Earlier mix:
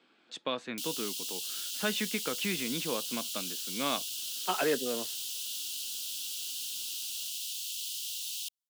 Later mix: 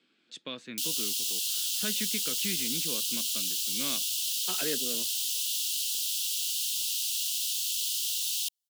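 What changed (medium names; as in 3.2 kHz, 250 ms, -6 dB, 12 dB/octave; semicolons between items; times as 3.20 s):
background +7.5 dB; master: add peaking EQ 830 Hz -13.5 dB 1.7 oct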